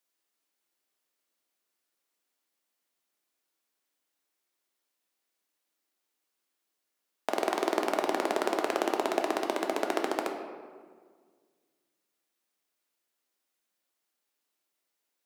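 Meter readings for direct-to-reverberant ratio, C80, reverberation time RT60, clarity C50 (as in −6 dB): 3.0 dB, 7.0 dB, 1.7 s, 5.5 dB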